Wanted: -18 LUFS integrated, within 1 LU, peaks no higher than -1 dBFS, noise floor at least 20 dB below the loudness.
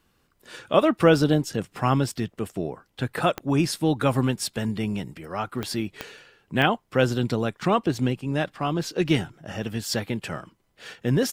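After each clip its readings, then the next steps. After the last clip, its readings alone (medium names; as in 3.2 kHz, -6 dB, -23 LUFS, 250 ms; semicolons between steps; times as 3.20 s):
clicks found 4; loudness -25.0 LUFS; peak level -3.5 dBFS; loudness target -18.0 LUFS
-> de-click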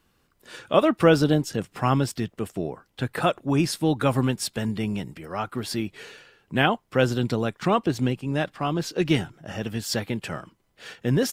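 clicks found 0; loudness -25.0 LUFS; peak level -3.5 dBFS; loudness target -18.0 LUFS
-> trim +7 dB; peak limiter -1 dBFS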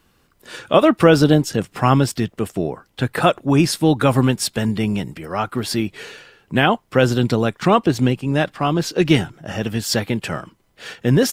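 loudness -18.5 LUFS; peak level -1.0 dBFS; noise floor -61 dBFS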